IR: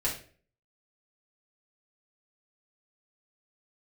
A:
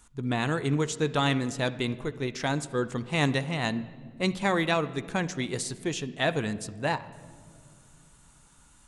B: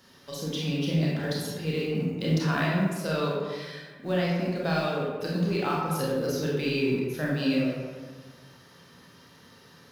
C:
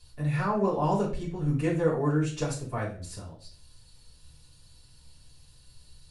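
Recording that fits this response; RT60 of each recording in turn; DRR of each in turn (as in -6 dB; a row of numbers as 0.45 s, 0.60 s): C; no single decay rate, 1.4 s, 0.45 s; 12.0 dB, -5.0 dB, -7.5 dB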